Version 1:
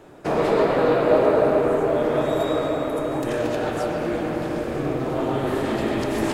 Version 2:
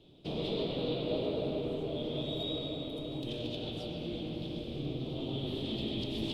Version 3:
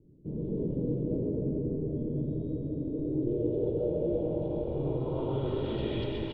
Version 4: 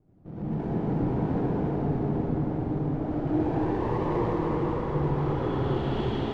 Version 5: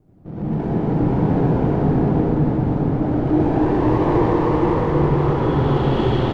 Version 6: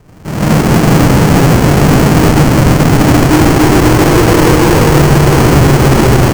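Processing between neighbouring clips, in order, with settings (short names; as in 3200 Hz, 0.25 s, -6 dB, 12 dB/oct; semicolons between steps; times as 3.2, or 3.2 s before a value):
EQ curve 180 Hz 0 dB, 570 Hz -10 dB, 1700 Hz -25 dB, 3400 Hz +12 dB, 6800 Hz -15 dB, 10000 Hz -13 dB; gain -8 dB
comb 2.1 ms, depth 54%; AGC gain up to 5 dB; low-pass sweep 240 Hz -> 1700 Hz, 2.65–5.97
minimum comb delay 0.64 ms; air absorption 70 m; reverb RT60 3.4 s, pre-delay 52 ms, DRR -8.5 dB; gain -4 dB
echo 0.528 s -3.5 dB; gain +8 dB
half-waves squared off; careless resampling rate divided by 6×, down filtered, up hold; maximiser +11 dB; gain -1 dB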